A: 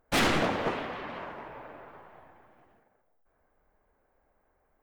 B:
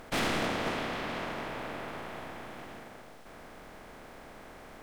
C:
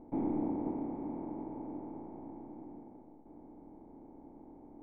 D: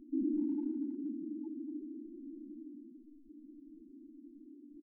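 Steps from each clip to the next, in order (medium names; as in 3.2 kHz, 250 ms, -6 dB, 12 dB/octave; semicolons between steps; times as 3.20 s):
spectral levelling over time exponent 0.4; trim -8 dB
cascade formant filter u; trim +7 dB
loudest bins only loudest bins 4; speakerphone echo 240 ms, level -19 dB; trim +2 dB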